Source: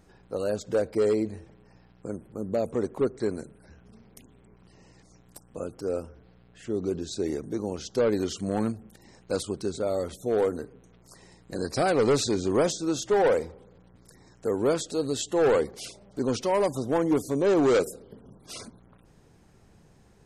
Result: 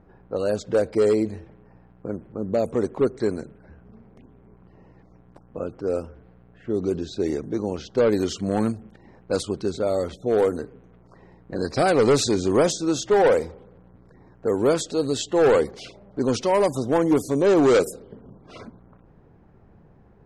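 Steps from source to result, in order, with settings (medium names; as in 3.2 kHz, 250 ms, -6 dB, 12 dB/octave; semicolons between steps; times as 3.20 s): level-controlled noise filter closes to 1.3 kHz, open at -22 dBFS; trim +4.5 dB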